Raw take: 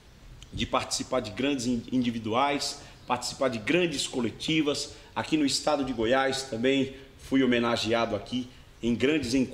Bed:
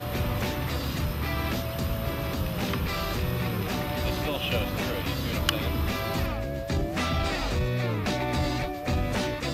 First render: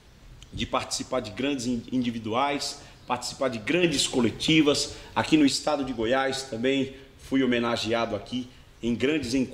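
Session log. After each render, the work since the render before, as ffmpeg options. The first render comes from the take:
-filter_complex "[0:a]asettb=1/sr,asplit=3[s0][s1][s2];[s0]atrim=end=3.834[s3];[s1]atrim=start=3.83:end=5.49,asetpts=PTS-STARTPTS,afade=t=in:d=0.004:c=qsin,afade=t=out:st=1.656:d=0.004:c=qsin,acontrast=42[s4];[s2]atrim=start=5.486[s5];[s3][s4]acrossfade=d=0.004:c1=hsin:c2=qsin[s6];[s6][s5]acrossfade=d=0.004:c1=qsin:c2=hsin"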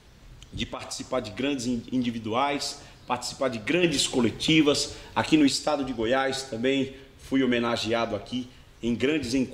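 -filter_complex "[0:a]asettb=1/sr,asplit=3[s0][s1][s2];[s0]atrim=end=0.634[s3];[s1]atrim=start=0.63:end=1.04,asetpts=PTS-STARTPTS,afade=t=in:d=0.004:c=qsin,afade=t=out:st=0.406:d=0.004:c=qsin,acompressor=threshold=0.0355:ratio=12:attack=3.2:release=140:knee=1:detection=peak[s4];[s2]atrim=start=1.036[s5];[s3][s4]acrossfade=d=0.004:c1=hsin:c2=qsin[s6];[s6][s5]acrossfade=d=0.004:c1=qsin:c2=hsin"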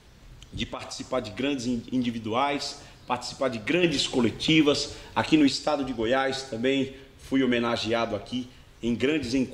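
-filter_complex "[0:a]acrossover=split=6700[s0][s1];[s1]acompressor=threshold=0.00355:ratio=4:attack=1:release=60[s2];[s0][s2]amix=inputs=2:normalize=0"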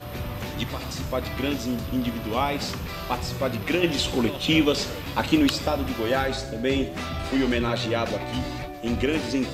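-filter_complex "[1:a]volume=0.631[s0];[0:a][s0]amix=inputs=2:normalize=0"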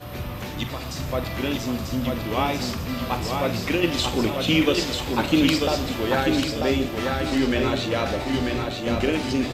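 -filter_complex "[0:a]asplit=2[s0][s1];[s1]adelay=45,volume=0.266[s2];[s0][s2]amix=inputs=2:normalize=0,aecho=1:1:942|1884|2826|3768|4710:0.631|0.24|0.0911|0.0346|0.0132"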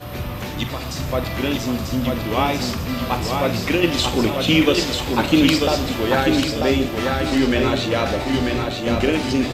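-af "volume=1.58"

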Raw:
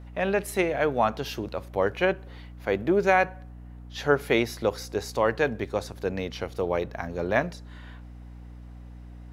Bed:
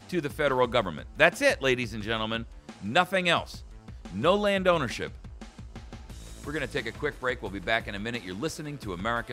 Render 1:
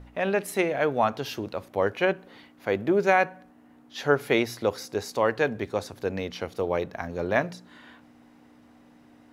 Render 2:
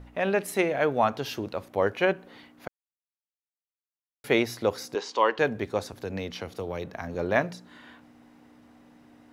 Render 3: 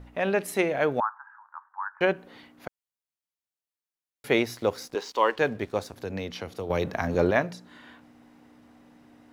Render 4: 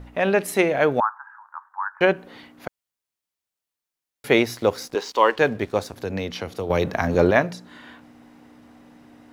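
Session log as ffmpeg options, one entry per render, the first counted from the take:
-af "bandreject=f=60:t=h:w=4,bandreject=f=120:t=h:w=4,bandreject=f=180:t=h:w=4"
-filter_complex "[0:a]asettb=1/sr,asplit=3[s0][s1][s2];[s0]atrim=end=4.954[s3];[s1]atrim=start=4.95:end=5.39,asetpts=PTS-STARTPTS,afade=t=in:d=0.004:c=qsin,afade=t=out:st=0.436:d=0.004:c=qsin,highpass=f=240:w=0.5412,highpass=f=240:w=1.3066,equalizer=f=250:t=q:w=4:g=-7,equalizer=f=680:t=q:w=4:g=-6,equalizer=f=990:t=q:w=4:g=8,equalizer=f=3100:t=q:w=4:g=10,lowpass=f=6500:w=0.5412,lowpass=f=6500:w=1.3066[s4];[s2]atrim=start=5.386[s5];[s3][s4]acrossfade=d=0.004:c1=hsin:c2=qsin[s6];[s6][s5]acrossfade=d=0.004:c1=qsin:c2=hsin,asettb=1/sr,asplit=3[s7][s8][s9];[s7]atrim=end=5.924[s10];[s8]atrim=start=5.92:end=7.15,asetpts=PTS-STARTPTS,afade=t=in:d=0.004:c=qsin,afade=t=out:st=1.226:d=0.004:c=qsin,acrossover=split=190|3000[s11][s12][s13];[s12]acompressor=threshold=0.0316:ratio=6:attack=3.2:release=140:knee=2.83:detection=peak[s14];[s11][s14][s13]amix=inputs=3:normalize=0[s15];[s9]atrim=start=7.146[s16];[s10][s15]acrossfade=d=0.004:c1=hsin:c2=qsin[s17];[s17][s16]acrossfade=d=0.004:c1=qsin:c2=hsin,asplit=3[s18][s19][s20];[s18]atrim=end=2.68,asetpts=PTS-STARTPTS,afade=t=out:st=2.676:d=0.004:c=hsin[s21];[s19]atrim=start=2.68:end=4.24,asetpts=PTS-STARTPTS,volume=0[s22];[s20]atrim=start=4.24,asetpts=PTS-STARTPTS,afade=t=in:d=0.004:c=hsin[s23];[s21][s22][s23]concat=n=3:v=0:a=1"
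-filter_complex "[0:a]asettb=1/sr,asplit=3[s0][s1][s2];[s0]atrim=end=1.004[s3];[s1]atrim=start=1:end=2.01,asetpts=PTS-STARTPTS,afade=t=in:d=0.004:c=qsin,afade=t=out:st=1.006:d=0.004:c=qsin,asuperpass=centerf=1200:order=12:qfactor=1.5[s4];[s2]atrim=start=2.006[s5];[s3][s4]acrossfade=d=0.004:c1=hsin:c2=qsin[s6];[s6][s5]acrossfade=d=0.004:c1=qsin:c2=hsin,asettb=1/sr,asplit=3[s7][s8][s9];[s7]atrim=end=4.344[s10];[s8]atrim=start=4.34:end=5.96,asetpts=PTS-STARTPTS,afade=t=in:d=0.004:c=qsin,afade=t=out:st=1.616:d=0.004:c=qsin,aeval=exprs='sgn(val(0))*max(abs(val(0))-0.00251,0)':c=same[s11];[s9]atrim=start=5.956[s12];[s10][s11]acrossfade=d=0.004:c1=hsin:c2=qsin[s13];[s13][s12]acrossfade=d=0.004:c1=qsin:c2=hsin,asplit=3[s14][s15][s16];[s14]atrim=end=6.702[s17];[s15]atrim=start=6.698:end=7.312,asetpts=PTS-STARTPTS,volume=2.37[s18];[s16]atrim=start=7.308[s19];[s17][s18]acrossfade=d=0.004:c1=hsin:c2=hsin[s20];[s20][s19]acrossfade=d=0.004:c1=hsin:c2=hsin"
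-af "volume=1.88"

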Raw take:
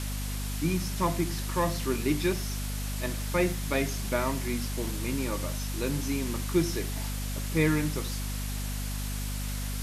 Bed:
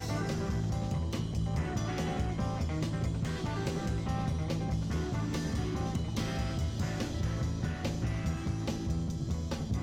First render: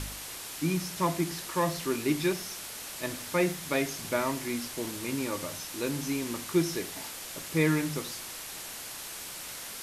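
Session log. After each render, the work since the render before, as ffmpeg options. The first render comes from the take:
-af "bandreject=f=50:t=h:w=4,bandreject=f=100:t=h:w=4,bandreject=f=150:t=h:w=4,bandreject=f=200:t=h:w=4,bandreject=f=250:t=h:w=4"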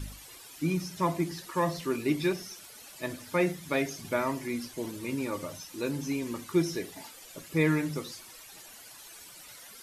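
-af "afftdn=nr=13:nf=-41"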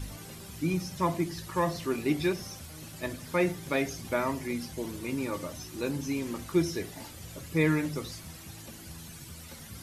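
-filter_complex "[1:a]volume=0.2[s0];[0:a][s0]amix=inputs=2:normalize=0"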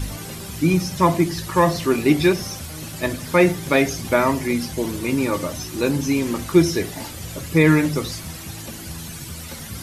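-af "volume=3.76,alimiter=limit=0.708:level=0:latency=1"

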